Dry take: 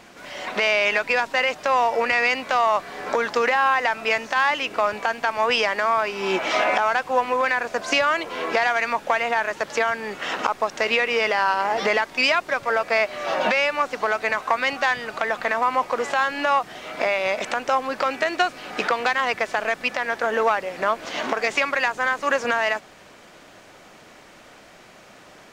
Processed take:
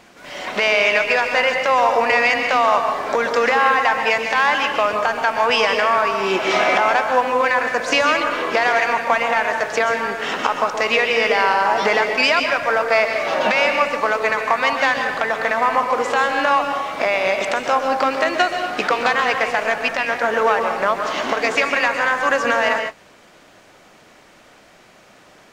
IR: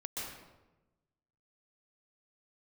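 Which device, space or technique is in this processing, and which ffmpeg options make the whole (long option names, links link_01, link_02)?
keyed gated reverb: -filter_complex "[0:a]asplit=3[link_01][link_02][link_03];[1:a]atrim=start_sample=2205[link_04];[link_02][link_04]afir=irnorm=-1:irlink=0[link_05];[link_03]apad=whole_len=1125729[link_06];[link_05][link_06]sidechaingate=range=-33dB:threshold=-38dB:ratio=16:detection=peak,volume=0dB[link_07];[link_01][link_07]amix=inputs=2:normalize=0,volume=-1dB"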